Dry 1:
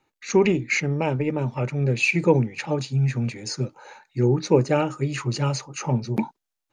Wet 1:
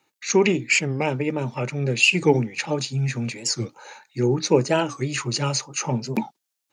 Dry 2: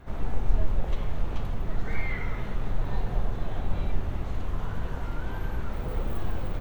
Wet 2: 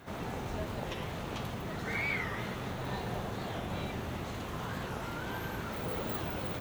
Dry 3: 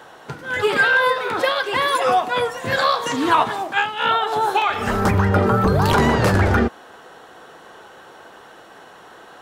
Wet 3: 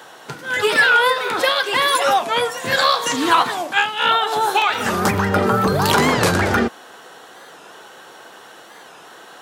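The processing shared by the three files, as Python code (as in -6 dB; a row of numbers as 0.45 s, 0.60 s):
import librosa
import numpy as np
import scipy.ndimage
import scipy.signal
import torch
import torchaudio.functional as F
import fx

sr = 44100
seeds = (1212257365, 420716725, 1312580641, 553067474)

y = scipy.signal.sosfilt(scipy.signal.butter(2, 130.0, 'highpass', fs=sr, output='sos'), x)
y = fx.high_shelf(y, sr, hz=2600.0, db=9.0)
y = fx.record_warp(y, sr, rpm=45.0, depth_cents=160.0)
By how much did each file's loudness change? +1.0 LU, -3.5 LU, +1.5 LU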